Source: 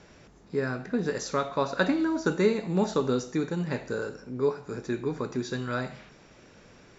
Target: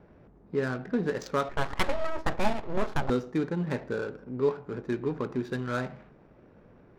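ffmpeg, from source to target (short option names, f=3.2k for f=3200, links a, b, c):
-filter_complex "[0:a]asettb=1/sr,asplit=3[a][b][c];[a]atrim=end=1.494[d];[b]atrim=start=1.49:end=3.1,asetpts=PTS-STARTPTS,afade=t=in:d=0.004:c=qsin,afade=t=out:st=1.606:d=0.004:c=qsin,aeval=exprs='abs(val(0))':c=same[e];[c]atrim=start=3.096[f];[d][e]acrossfade=d=0.004:c1=hsin:c2=qsin[g];[g][f]acrossfade=d=0.004:c1=qsin:c2=hsin,adynamicsmooth=sensitivity=7.5:basefreq=950"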